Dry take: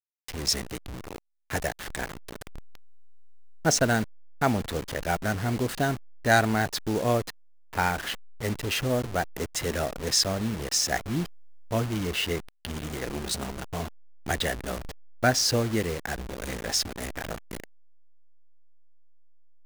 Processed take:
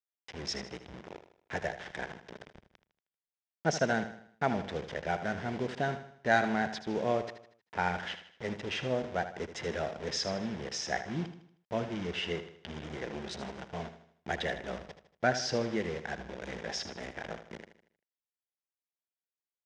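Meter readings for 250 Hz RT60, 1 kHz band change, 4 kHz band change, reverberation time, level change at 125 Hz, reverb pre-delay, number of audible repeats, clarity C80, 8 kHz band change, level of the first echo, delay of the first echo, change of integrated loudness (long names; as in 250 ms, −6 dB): no reverb audible, −4.5 dB, −9.5 dB, no reverb audible, −10.0 dB, no reverb audible, 4, no reverb audible, −14.5 dB, −11.0 dB, 78 ms, −7.0 dB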